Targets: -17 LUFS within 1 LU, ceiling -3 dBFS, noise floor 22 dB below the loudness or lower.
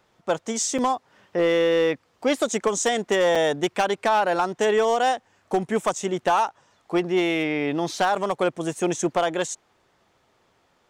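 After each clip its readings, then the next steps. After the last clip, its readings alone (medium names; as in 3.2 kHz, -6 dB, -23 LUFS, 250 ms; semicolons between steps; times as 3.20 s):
clipped samples 0.8%; clipping level -14.0 dBFS; dropouts 3; longest dropout 5.3 ms; loudness -23.5 LUFS; peak level -14.0 dBFS; loudness target -17.0 LUFS
-> clip repair -14 dBFS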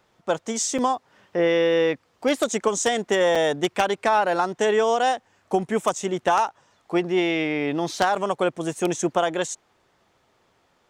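clipped samples 0.0%; dropouts 3; longest dropout 5.3 ms
-> interpolate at 0.78/3.35/8.15 s, 5.3 ms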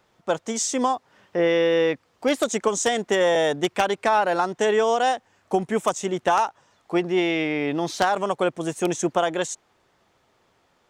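dropouts 0; loudness -23.0 LUFS; peak level -5.0 dBFS; loudness target -17.0 LUFS
-> trim +6 dB; peak limiter -3 dBFS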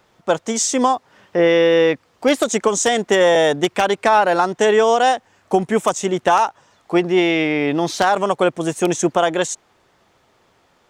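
loudness -17.5 LUFS; peak level -3.0 dBFS; noise floor -59 dBFS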